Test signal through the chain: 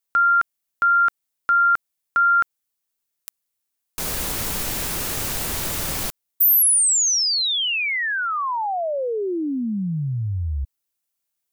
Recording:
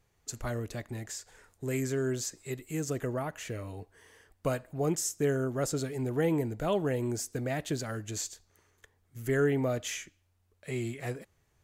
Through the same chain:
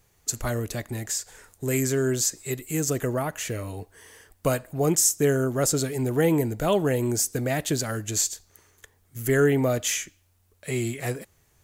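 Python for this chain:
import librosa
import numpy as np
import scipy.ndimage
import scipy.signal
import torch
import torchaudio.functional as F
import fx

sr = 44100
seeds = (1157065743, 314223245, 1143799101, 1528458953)

y = fx.high_shelf(x, sr, hz=6500.0, db=10.5)
y = y * 10.0 ** (6.5 / 20.0)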